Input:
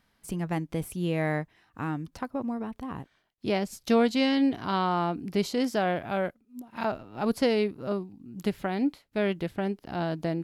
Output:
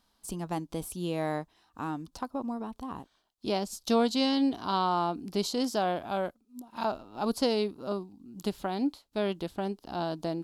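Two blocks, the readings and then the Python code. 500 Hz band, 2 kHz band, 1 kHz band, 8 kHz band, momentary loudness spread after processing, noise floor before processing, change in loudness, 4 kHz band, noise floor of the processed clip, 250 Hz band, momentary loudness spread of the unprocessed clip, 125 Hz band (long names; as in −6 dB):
−2.5 dB, −7.0 dB, 0.0 dB, +3.0 dB, 12 LU, −70 dBFS, −2.5 dB, +1.0 dB, −72 dBFS, −3.0 dB, 12 LU, −6.0 dB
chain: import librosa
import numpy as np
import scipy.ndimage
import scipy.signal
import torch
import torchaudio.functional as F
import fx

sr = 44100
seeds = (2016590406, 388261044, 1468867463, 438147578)

y = fx.graphic_eq_10(x, sr, hz=(125, 500, 1000, 2000, 4000, 8000), db=(-11, -3, 4, -12, 5, 3))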